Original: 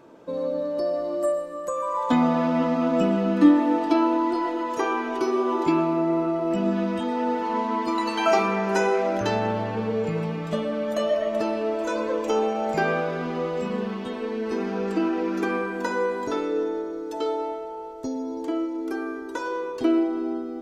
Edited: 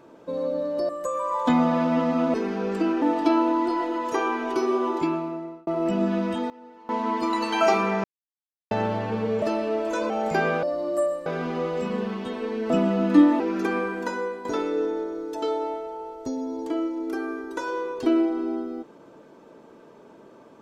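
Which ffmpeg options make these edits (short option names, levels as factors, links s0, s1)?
-filter_complex "[0:a]asplit=16[s0][s1][s2][s3][s4][s5][s6][s7][s8][s9][s10][s11][s12][s13][s14][s15];[s0]atrim=end=0.892[s16];[s1]atrim=start=1.518:end=2.972[s17];[s2]atrim=start=14.498:end=15.182[s18];[s3]atrim=start=3.668:end=6.32,asetpts=PTS-STARTPTS,afade=t=out:st=1.742:d=0.91[s19];[s4]atrim=start=6.32:end=7.15,asetpts=PTS-STARTPTS,afade=t=in:d=0.004:c=hsin,afade=t=out:st=0.57:d=0.26:c=log:silence=0.0841395[s20];[s5]atrim=start=7.15:end=7.54,asetpts=PTS-STARTPTS,volume=0.0841[s21];[s6]atrim=start=7.54:end=8.69,asetpts=PTS-STARTPTS,afade=t=in:d=0.26:c=log:silence=0.0841395,afade=t=out:st=1.146:d=0.004:c=hsin[s22];[s7]atrim=start=8.69:end=9.36,asetpts=PTS-STARTPTS,volume=0[s23];[s8]atrim=start=9.36:end=10.072,asetpts=PTS-STARTPTS,afade=t=in:d=0.004:c=hsin[s24];[s9]atrim=start=11.358:end=12.042[s25];[s10]atrim=start=12.528:end=13.062[s26];[s11]atrim=start=0.888:end=1.522[s27];[s12]atrim=start=13.058:end=14.502[s28];[s13]atrim=start=2.968:end=3.672[s29];[s14]atrim=start=15.178:end=16.23,asetpts=PTS-STARTPTS,afade=t=out:st=0.512:d=0.54:silence=0.334965[s30];[s15]atrim=start=16.23,asetpts=PTS-STARTPTS,afade=t=in:d=0.004:c=hsin:silence=0.334965[s31];[s16][s17]acrossfade=d=0.004:c1=hsin:c2=hsin[s32];[s32][s18]acrossfade=d=0.004:c1=hsin:c2=hsin[s33];[s19][s20][s21][s22][s23][s24]concat=n=6:v=0:a=1[s34];[s33][s34]acrossfade=d=0.004:c1=hsin:c2=hsin[s35];[s35][s25]acrossfade=d=0.004:c1=hsin:c2=hsin[s36];[s36][s26]acrossfade=d=0.004:c1=hsin:c2=hsin[s37];[s37][s27]acrossfade=d=0.004:c1=hsin:c2=hsin[s38];[s38][s28]acrossfade=d=0.004:c1=hsin:c2=hsin[s39];[s39][s29]acrossfade=d=0.004:c1=hsin:c2=hsin[s40];[s30][s31]concat=n=2:v=0:a=1[s41];[s40][s41]acrossfade=d=0.004:c1=hsin:c2=hsin"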